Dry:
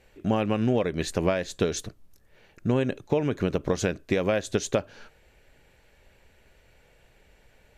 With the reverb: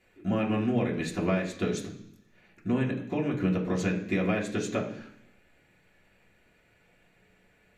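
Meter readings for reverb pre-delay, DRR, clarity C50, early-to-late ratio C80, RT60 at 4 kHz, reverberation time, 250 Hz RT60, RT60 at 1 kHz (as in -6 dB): 3 ms, -3.0 dB, 9.0 dB, 11.5 dB, 1.0 s, 0.70 s, 0.90 s, 0.70 s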